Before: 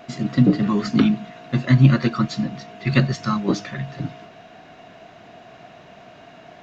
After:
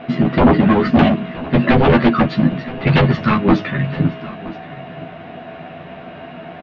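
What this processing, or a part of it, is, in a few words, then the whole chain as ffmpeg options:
synthesiser wavefolder: -filter_complex "[0:a]aeval=exprs='0.141*(abs(mod(val(0)/0.141+3,4)-2)-1)':channel_layout=same,lowpass=frequency=3200:width=0.5412,lowpass=frequency=3200:width=1.3066,equalizer=frequency=200:width_type=o:width=1.8:gain=4.5,asplit=2[link_01][link_02];[link_02]adelay=12,volume=-3.5dB[link_03];[link_01][link_03]amix=inputs=2:normalize=0,aecho=1:1:972:0.126,volume=8dB"

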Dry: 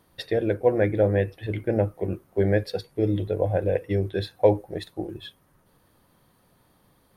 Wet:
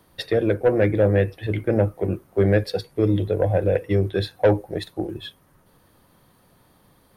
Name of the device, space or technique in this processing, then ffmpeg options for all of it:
one-band saturation: -filter_complex "[0:a]acrossover=split=210|2300[link_01][link_02][link_03];[link_02]asoftclip=type=tanh:threshold=-15dB[link_04];[link_01][link_04][link_03]amix=inputs=3:normalize=0,volume=4.5dB"

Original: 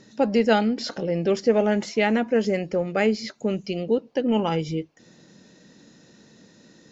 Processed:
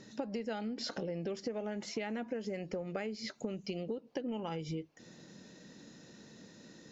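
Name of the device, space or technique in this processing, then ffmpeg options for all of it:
serial compression, leveller first: -af "acompressor=threshold=-22dB:ratio=2.5,acompressor=threshold=-33dB:ratio=6,volume=-2.5dB"

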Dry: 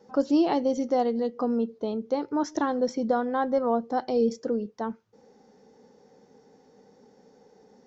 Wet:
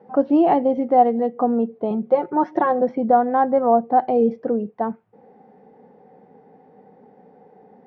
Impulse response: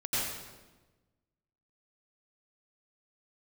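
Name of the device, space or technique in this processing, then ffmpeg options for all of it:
bass cabinet: -filter_complex "[0:a]asettb=1/sr,asplit=3[link_01][link_02][link_03];[link_01]atrim=end=1.904[link_04];[link_02]atrim=start=1.9:end=2.82,asetpts=PTS-STARTPTS,afade=type=in:duration=0.004:curve=qsin,afade=type=out:start_time=0.916:duration=0.004:curve=qsin,aecho=1:1:5.5:0.8,atrim=end_sample=40572[link_05];[link_03]atrim=start=2.816[link_06];[link_04][link_05]acrossfade=duration=0.004:curve1=hsin:curve2=qsin[link_07];[link_07][link_06]acrossfade=duration=0.004:curve1=qsin:curve2=hsin,highpass=75,equalizer=frequency=170:width_type=q:width=4:gain=5,equalizer=frequency=730:width_type=q:width=4:gain=9,equalizer=frequency=1400:width_type=q:width=4:gain=-3,lowpass=frequency=2400:width=0.5412,lowpass=frequency=2400:width=1.3066,volume=5dB"

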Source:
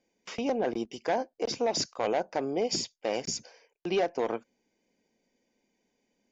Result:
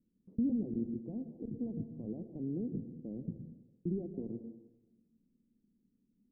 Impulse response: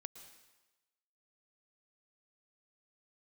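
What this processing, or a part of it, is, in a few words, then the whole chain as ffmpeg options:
club heard from the street: -filter_complex "[0:a]alimiter=limit=-23dB:level=0:latency=1:release=390,lowpass=frequency=240:width=0.5412,lowpass=frequency=240:width=1.3066[link_01];[1:a]atrim=start_sample=2205[link_02];[link_01][link_02]afir=irnorm=-1:irlink=0,volume=12.5dB"

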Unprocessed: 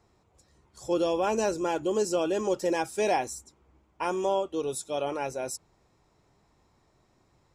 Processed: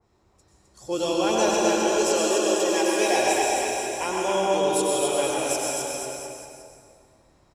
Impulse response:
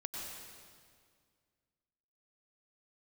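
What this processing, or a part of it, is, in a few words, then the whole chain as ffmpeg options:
stairwell: -filter_complex "[0:a]asettb=1/sr,asplit=3[link_01][link_02][link_03];[link_01]atrim=end=1.434[link_04];[link_02]atrim=start=1.43:end=3.14,asetpts=PTS-STARTPTS,afade=type=in:duration=0.004:curve=qsin,afade=type=out:start_time=1.706:duration=0.004:curve=qsin,highpass=frequency=280:width=0.5412,highpass=frequency=280:width=1.3066[link_05];[link_03]atrim=start=3.136[link_06];[link_04][link_05]acrossfade=duration=0.004:curve1=hsin:curve2=qsin[link_07];[link_07][link_06]acrossfade=duration=0.004:curve1=qsin:curve2=hsin,aecho=1:1:260|494|704.6|894.1|1065:0.631|0.398|0.251|0.158|0.1[link_08];[1:a]atrim=start_sample=2205[link_09];[link_08][link_09]afir=irnorm=-1:irlink=0,adynamicequalizer=threshold=0.00562:dfrequency=2000:dqfactor=0.7:tfrequency=2000:tqfactor=0.7:attack=5:release=100:ratio=0.375:range=4:mode=boostabove:tftype=highshelf,volume=3dB"

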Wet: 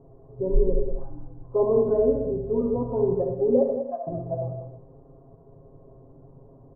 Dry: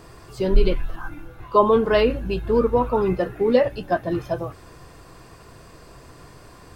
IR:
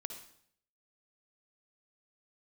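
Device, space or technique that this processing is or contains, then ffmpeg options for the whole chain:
next room: -filter_complex "[0:a]asettb=1/sr,asplit=3[link_01][link_02][link_03];[link_01]atrim=end=3.624[link_04];[link_02]atrim=start=3.62:end=4.07,asetpts=PTS-STARTPTS,afade=type=in:duration=0.004:curve=qsin,afade=type=out:start_time=0.446:duration=0.004:curve=qsin,highpass=frequency=720:width=0.5412,highpass=frequency=720:width=1.3066[link_05];[link_03]atrim=start=4.066[link_06];[link_04][link_05]acrossfade=duration=0.004:curve1=hsin:curve2=qsin[link_07];[link_07][link_06]acrossfade=duration=0.004:curve1=qsin:curve2=hsin,lowpass=frequency=640:width=0.5412,lowpass=frequency=640:width=1.3066,equalizer=frequency=920:width=1.5:gain=3.5[link_08];[1:a]atrim=start_sample=2205[link_09];[link_08][link_09]afir=irnorm=-1:irlink=0,aecho=1:1:7.4:0.96,aecho=1:1:193:0.335,volume=-4.5dB"

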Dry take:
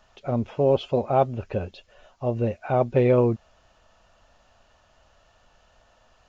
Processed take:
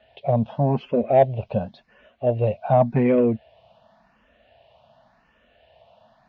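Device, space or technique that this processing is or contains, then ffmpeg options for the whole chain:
barber-pole phaser into a guitar amplifier: -filter_complex "[0:a]asplit=2[link_01][link_02];[link_02]afreqshift=0.9[link_03];[link_01][link_03]amix=inputs=2:normalize=1,asoftclip=type=tanh:threshold=-14dB,highpass=80,equalizer=frequency=90:width_type=q:width=4:gain=-4,equalizer=frequency=140:width_type=q:width=4:gain=4,equalizer=frequency=220:width_type=q:width=4:gain=6,equalizer=frequency=350:width_type=q:width=4:gain=-7,equalizer=frequency=660:width_type=q:width=4:gain=6,equalizer=frequency=1300:width_type=q:width=4:gain=-9,lowpass=frequency=3700:width=0.5412,lowpass=frequency=3700:width=1.3066,volume=5.5dB"

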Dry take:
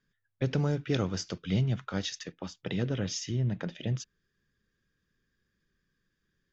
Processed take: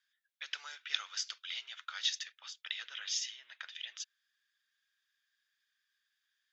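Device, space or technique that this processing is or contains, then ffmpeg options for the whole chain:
headphones lying on a table: -af "highpass=frequency=1400:width=0.5412,highpass=frequency=1400:width=1.3066,equalizer=frequency=3500:width_type=o:width=0.49:gain=6"

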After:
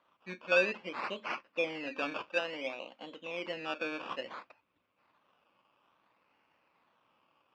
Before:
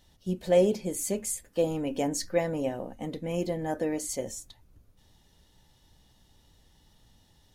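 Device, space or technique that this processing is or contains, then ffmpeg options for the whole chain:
circuit-bent sampling toy: -filter_complex "[0:a]acrusher=samples=17:mix=1:aa=0.000001:lfo=1:lforange=10.2:lforate=0.58,highpass=410,equalizer=frequency=410:width_type=q:width=4:gain=-7,equalizer=frequency=740:width_type=q:width=4:gain=-4,equalizer=frequency=1100:width_type=q:width=4:gain=6,equalizer=frequency=1800:width_type=q:width=4:gain=-4,equalizer=frequency=2600:width_type=q:width=4:gain=9,equalizer=frequency=3900:width_type=q:width=4:gain=-6,lowpass=frequency=4200:width=0.5412,lowpass=frequency=4200:width=1.3066,asettb=1/sr,asplit=3[link_01][link_02][link_03];[link_01]atrim=end=2.294[link_04];[link_02]atrim=start=2.29:end=3.44,asetpts=PTS-STARTPTS,afade=type=in:duration=0.004:curve=qsin,afade=type=out:start_time=1.146:duration=0.004:curve=qsin,highpass=frequency=250:poles=1[link_05];[link_03]atrim=start=3.436[link_06];[link_04][link_05]acrossfade=duration=0.004:curve1=hsin:curve2=qsin[link_07];[link_07][link_06]acrossfade=duration=0.004:curve1=qsin:curve2=hsin,volume=-3.5dB"

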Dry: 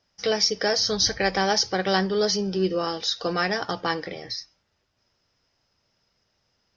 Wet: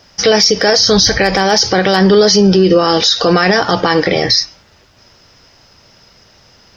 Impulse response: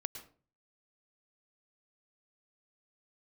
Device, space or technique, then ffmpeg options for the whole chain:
loud club master: -af "acompressor=threshold=-29dB:ratio=1.5,asoftclip=type=hard:threshold=-15.5dB,alimiter=level_in=26dB:limit=-1dB:release=50:level=0:latency=1,volume=-1dB"

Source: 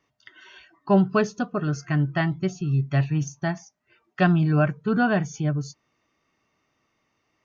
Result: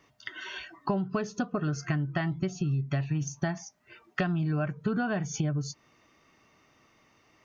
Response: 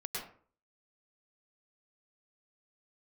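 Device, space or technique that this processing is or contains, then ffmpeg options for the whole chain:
serial compression, leveller first: -af "acompressor=threshold=-24dB:ratio=2.5,acompressor=threshold=-36dB:ratio=5,volume=8.5dB"

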